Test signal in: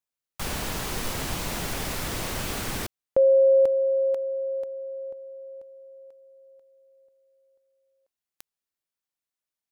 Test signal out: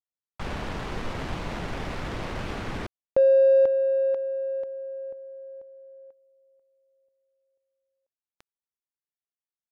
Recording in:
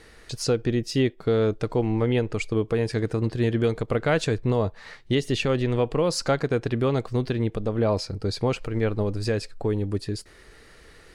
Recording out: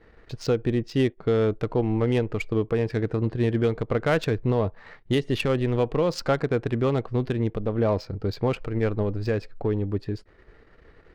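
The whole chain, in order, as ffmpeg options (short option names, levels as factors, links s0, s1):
-af "agate=range=0.355:threshold=0.00316:ratio=3:release=25:detection=rms,adynamicsmooth=sensitivity=2.5:basefreq=2000"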